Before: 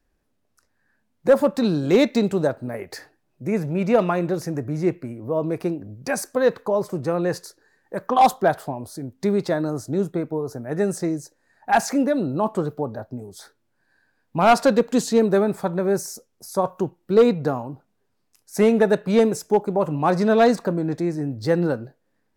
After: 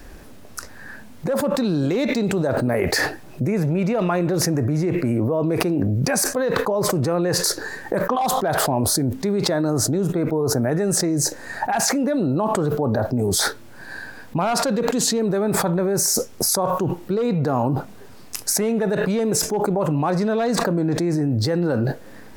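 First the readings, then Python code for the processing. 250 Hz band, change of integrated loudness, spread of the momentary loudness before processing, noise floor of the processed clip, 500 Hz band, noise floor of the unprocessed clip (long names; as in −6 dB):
+1.5 dB, +0.5 dB, 15 LU, −41 dBFS, −1.5 dB, −71 dBFS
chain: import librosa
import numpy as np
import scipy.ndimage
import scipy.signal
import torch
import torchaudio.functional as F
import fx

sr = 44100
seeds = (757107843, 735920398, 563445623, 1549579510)

y = fx.env_flatten(x, sr, amount_pct=100)
y = y * 10.0 ** (-10.0 / 20.0)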